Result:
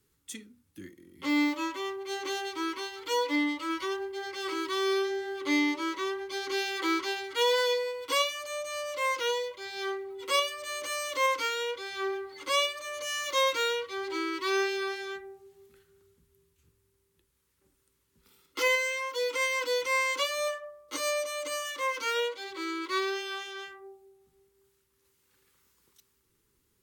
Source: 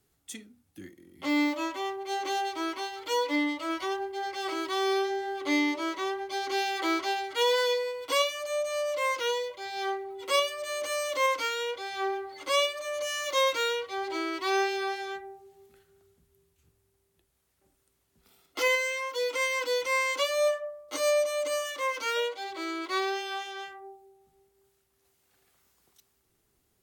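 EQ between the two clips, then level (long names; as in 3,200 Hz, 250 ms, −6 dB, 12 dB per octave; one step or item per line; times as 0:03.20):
Butterworth band-reject 690 Hz, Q 2.3
0.0 dB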